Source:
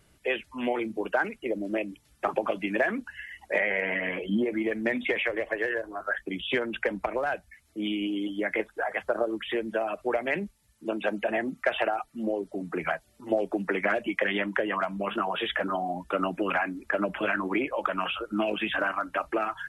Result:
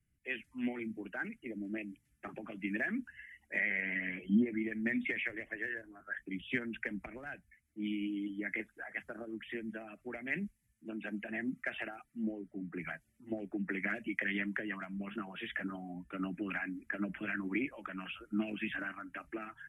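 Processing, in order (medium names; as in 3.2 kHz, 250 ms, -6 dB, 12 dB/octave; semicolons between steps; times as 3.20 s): graphic EQ 125/250/500/1000/2000/4000 Hz +4/+7/-11/-12/+8/-12 dB; three bands expanded up and down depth 40%; trim -8.5 dB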